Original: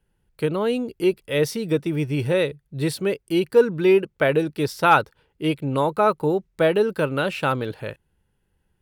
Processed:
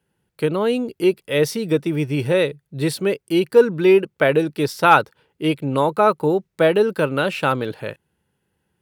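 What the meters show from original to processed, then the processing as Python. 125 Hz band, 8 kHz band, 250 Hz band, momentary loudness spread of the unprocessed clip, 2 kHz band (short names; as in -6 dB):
+1.5 dB, +3.0 dB, +3.0 dB, 9 LU, +3.0 dB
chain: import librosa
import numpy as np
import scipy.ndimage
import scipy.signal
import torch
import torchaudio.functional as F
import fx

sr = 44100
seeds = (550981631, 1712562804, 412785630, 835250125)

y = scipy.signal.sosfilt(scipy.signal.butter(2, 120.0, 'highpass', fs=sr, output='sos'), x)
y = F.gain(torch.from_numpy(y), 3.0).numpy()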